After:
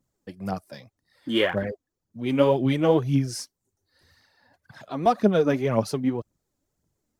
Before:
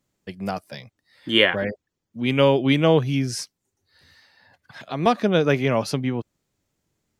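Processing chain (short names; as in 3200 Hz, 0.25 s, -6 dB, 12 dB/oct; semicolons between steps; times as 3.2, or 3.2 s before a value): bell 2700 Hz -9 dB 1.5 oct; phaser 1.9 Hz, delay 4.2 ms, feedback 53%; gain -3 dB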